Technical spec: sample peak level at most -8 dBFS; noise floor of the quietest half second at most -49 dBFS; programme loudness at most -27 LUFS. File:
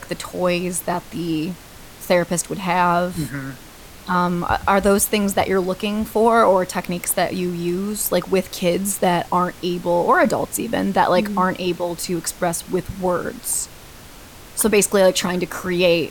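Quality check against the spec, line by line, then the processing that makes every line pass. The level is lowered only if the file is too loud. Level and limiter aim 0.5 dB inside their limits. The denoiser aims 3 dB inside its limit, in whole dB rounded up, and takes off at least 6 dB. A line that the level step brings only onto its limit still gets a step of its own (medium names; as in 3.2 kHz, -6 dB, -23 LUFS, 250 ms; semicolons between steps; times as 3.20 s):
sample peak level -5.0 dBFS: fail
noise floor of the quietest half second -41 dBFS: fail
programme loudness -20.0 LUFS: fail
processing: noise reduction 6 dB, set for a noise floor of -41 dBFS; trim -7.5 dB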